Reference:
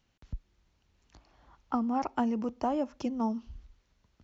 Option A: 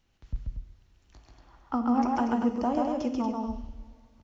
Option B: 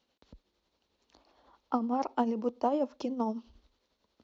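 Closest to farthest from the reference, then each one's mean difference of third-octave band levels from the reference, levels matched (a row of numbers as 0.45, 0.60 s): B, A; 2.5, 5.0 dB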